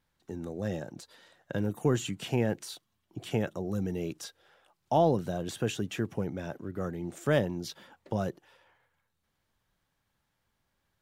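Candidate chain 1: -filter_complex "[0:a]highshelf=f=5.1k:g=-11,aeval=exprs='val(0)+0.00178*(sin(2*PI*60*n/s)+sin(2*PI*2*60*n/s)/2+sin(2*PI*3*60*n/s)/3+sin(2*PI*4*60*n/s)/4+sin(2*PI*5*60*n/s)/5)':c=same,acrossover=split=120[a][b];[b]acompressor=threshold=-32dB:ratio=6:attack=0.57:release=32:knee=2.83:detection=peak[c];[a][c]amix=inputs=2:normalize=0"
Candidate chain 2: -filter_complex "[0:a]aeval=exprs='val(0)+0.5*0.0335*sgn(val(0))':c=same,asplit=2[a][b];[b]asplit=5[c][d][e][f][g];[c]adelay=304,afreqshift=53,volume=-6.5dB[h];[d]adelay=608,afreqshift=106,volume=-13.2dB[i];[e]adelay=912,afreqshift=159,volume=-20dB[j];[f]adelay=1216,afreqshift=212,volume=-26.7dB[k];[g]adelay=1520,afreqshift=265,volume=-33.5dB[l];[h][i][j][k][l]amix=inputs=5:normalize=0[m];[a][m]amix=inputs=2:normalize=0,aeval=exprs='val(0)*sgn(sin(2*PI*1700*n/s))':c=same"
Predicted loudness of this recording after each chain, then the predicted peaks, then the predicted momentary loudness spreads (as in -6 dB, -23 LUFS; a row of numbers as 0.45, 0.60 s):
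-38.0, -26.5 LUFS; -24.0, -12.0 dBFS; 15, 9 LU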